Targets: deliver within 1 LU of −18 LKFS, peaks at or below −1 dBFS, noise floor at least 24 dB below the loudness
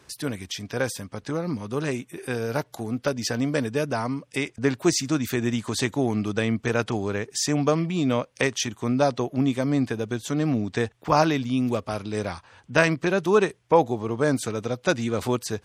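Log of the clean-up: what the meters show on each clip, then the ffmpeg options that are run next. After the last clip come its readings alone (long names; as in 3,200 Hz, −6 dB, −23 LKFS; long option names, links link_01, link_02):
integrated loudness −25.5 LKFS; sample peak −3.5 dBFS; target loudness −18.0 LKFS
→ -af "volume=7.5dB,alimiter=limit=-1dB:level=0:latency=1"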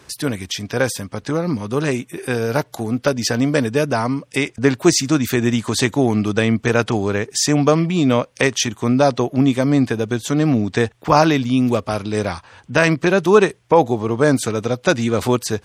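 integrated loudness −18.5 LKFS; sample peak −1.0 dBFS; background noise floor −52 dBFS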